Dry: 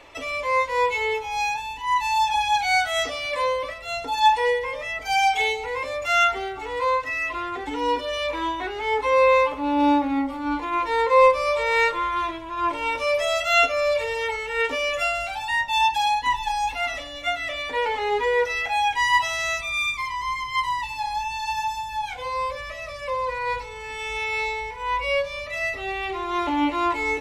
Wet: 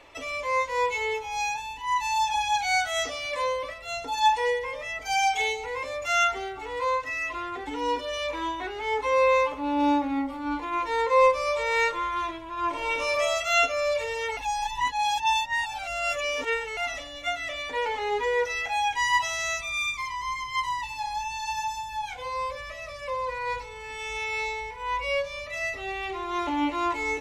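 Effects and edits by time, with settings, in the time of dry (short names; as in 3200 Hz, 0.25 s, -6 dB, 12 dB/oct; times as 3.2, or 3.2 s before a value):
12.69–13.11 reverb throw, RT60 1 s, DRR 0.5 dB
14.37–16.77 reverse
whole clip: dynamic EQ 6400 Hz, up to +7 dB, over -52 dBFS, Q 3.1; gain -4 dB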